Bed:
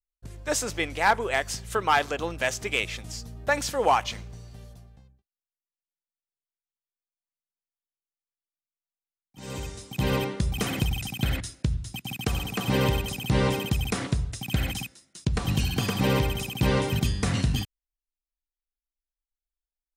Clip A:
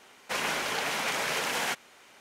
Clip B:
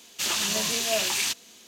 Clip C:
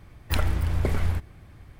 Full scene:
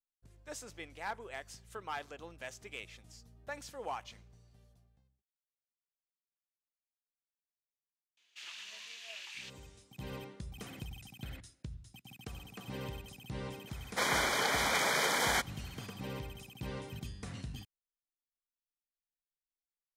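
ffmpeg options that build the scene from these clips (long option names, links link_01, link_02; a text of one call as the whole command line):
ffmpeg -i bed.wav -i cue0.wav -i cue1.wav -filter_complex "[0:a]volume=-18.5dB[link_01];[2:a]bandpass=frequency=2400:width_type=q:width=1.5:csg=0[link_02];[1:a]asuperstop=centerf=2700:order=12:qfactor=4.9[link_03];[link_02]atrim=end=1.67,asetpts=PTS-STARTPTS,volume=-15.5dB,afade=type=in:duration=0.004:curve=hsin,afade=type=out:start_time=1.666:duration=0.004:curve=hsin,adelay=8170[link_04];[link_03]atrim=end=2.2,asetpts=PTS-STARTPTS,afade=type=in:duration=0.004:curve=hsin,afade=type=out:start_time=2.196:duration=0.004:curve=hsin,adelay=13670[link_05];[link_01][link_04][link_05]amix=inputs=3:normalize=0" out.wav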